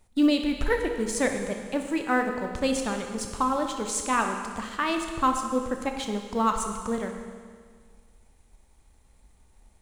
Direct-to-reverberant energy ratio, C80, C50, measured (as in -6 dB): 4.0 dB, 6.5 dB, 5.5 dB